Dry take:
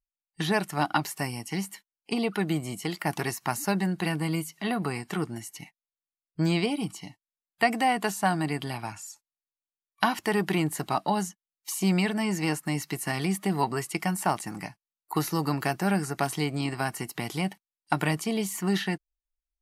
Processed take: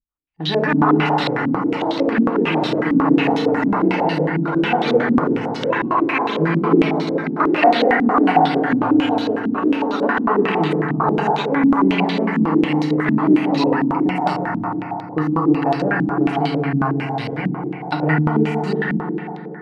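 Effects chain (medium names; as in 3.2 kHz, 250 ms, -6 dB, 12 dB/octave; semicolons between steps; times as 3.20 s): ever faster or slower copies 310 ms, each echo +6 st, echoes 3; FDN reverb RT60 3.7 s, high-frequency decay 0.25×, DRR -3 dB; step-sequenced low-pass 11 Hz 240–3900 Hz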